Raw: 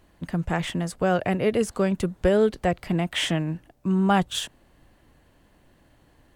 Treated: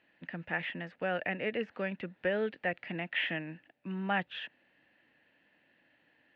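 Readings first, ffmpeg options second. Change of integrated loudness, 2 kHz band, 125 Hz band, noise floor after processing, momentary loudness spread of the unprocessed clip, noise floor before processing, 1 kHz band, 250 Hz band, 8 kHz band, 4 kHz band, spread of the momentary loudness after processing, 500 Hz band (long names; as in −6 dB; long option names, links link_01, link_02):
−11.0 dB, −2.0 dB, −16.5 dB, −71 dBFS, 9 LU, −60 dBFS, −11.0 dB, −15.0 dB, below −40 dB, −11.0 dB, 11 LU, −12.0 dB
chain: -filter_complex "[0:a]acrossover=split=2900[link_01][link_02];[link_02]acompressor=threshold=-49dB:ratio=4:attack=1:release=60[link_03];[link_01][link_03]amix=inputs=2:normalize=0,highpass=270,equalizer=frequency=390:width_type=q:width=4:gain=-7,equalizer=frequency=700:width_type=q:width=4:gain=-3,equalizer=frequency=1100:width_type=q:width=4:gain=-9,equalizer=frequency=1800:width_type=q:width=4:gain=10,equalizer=frequency=2600:width_type=q:width=4:gain=9,lowpass=frequency=3800:width=0.5412,lowpass=frequency=3800:width=1.3066,volume=-8dB"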